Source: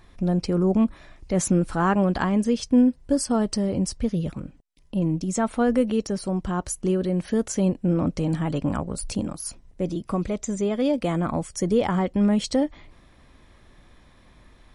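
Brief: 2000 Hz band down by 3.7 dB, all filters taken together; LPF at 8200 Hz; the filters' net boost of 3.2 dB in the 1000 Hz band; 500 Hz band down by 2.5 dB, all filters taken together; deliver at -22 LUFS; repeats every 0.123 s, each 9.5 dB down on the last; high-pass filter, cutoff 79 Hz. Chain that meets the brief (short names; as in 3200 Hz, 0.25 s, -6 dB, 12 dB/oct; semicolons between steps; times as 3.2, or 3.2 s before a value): HPF 79 Hz; LPF 8200 Hz; bell 500 Hz -4.5 dB; bell 1000 Hz +7.5 dB; bell 2000 Hz -8.5 dB; feedback echo 0.123 s, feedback 33%, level -9.5 dB; gain +2.5 dB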